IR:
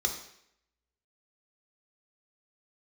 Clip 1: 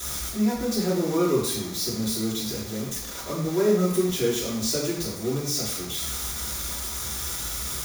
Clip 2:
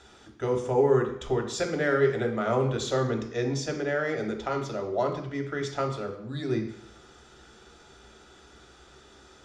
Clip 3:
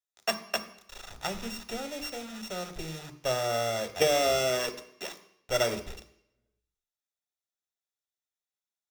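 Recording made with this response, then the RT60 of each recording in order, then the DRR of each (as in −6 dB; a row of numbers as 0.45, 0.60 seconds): 2; 0.70, 0.70, 0.70 seconds; −7.5, 2.0, 8.0 decibels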